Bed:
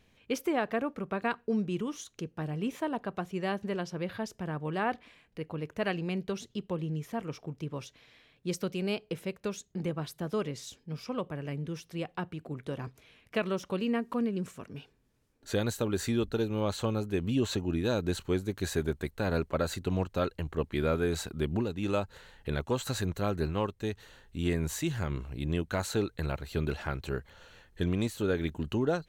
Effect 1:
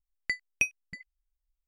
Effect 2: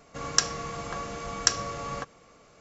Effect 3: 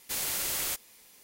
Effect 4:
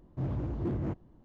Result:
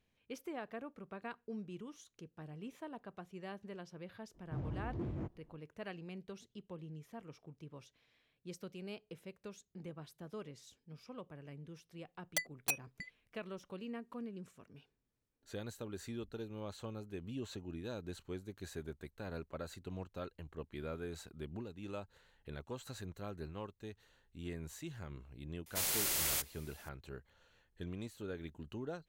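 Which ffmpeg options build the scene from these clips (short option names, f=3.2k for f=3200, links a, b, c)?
-filter_complex "[0:a]volume=-14.5dB[a];[1:a]aeval=exprs='(mod(12.6*val(0)+1,2)-1)/12.6':c=same[b];[4:a]atrim=end=1.24,asetpts=PTS-STARTPTS,volume=-8dB,afade=t=in:d=0.004:c=hsin,afade=t=out:st=1.236:d=0.004:c=hsin,adelay=4340[c];[b]atrim=end=1.67,asetpts=PTS-STARTPTS,volume=-4dB,afade=t=in:d=0.004:c=hsin,afade=t=out:st=1.666:d=0.004:c=hsin,adelay=12070[d];[3:a]atrim=end=1.23,asetpts=PTS-STARTPTS,volume=-3dB,afade=t=in:d=0.004:c=hsin,afade=t=out:st=1.226:d=0.004:c=hsin,adelay=25660[e];[a][c][d][e]amix=inputs=4:normalize=0"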